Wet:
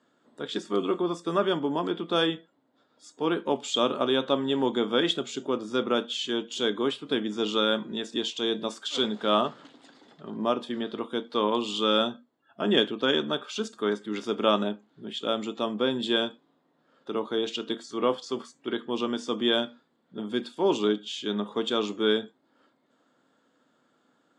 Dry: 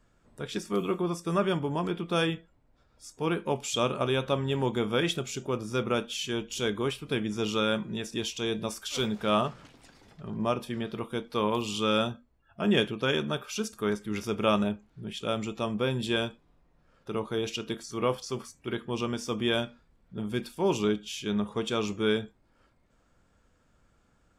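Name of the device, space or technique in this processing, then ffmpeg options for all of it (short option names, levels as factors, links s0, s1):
television speaker: -af "highpass=f=190:w=0.5412,highpass=f=190:w=1.3066,equalizer=f=190:t=q:w=4:g=-6,equalizer=f=270:t=q:w=4:g=5,equalizer=f=2400:t=q:w=4:g=-8,equalizer=f=3500:t=q:w=4:g=5,equalizer=f=5700:t=q:w=4:g=-9,lowpass=f=7200:w=0.5412,lowpass=f=7200:w=1.3066,volume=1.33"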